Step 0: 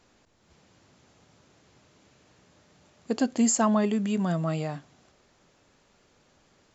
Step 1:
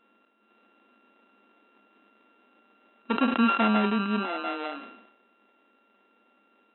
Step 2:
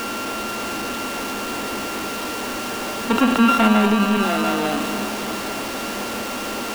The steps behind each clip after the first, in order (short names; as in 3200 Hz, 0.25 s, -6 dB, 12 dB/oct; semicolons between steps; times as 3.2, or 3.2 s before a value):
sample sorter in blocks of 32 samples; FFT band-pass 200–4000 Hz; sustainer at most 65 dB/s
zero-crossing step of -26.5 dBFS; echo with dull and thin repeats by turns 0.271 s, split 890 Hz, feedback 73%, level -8 dB; gain +5.5 dB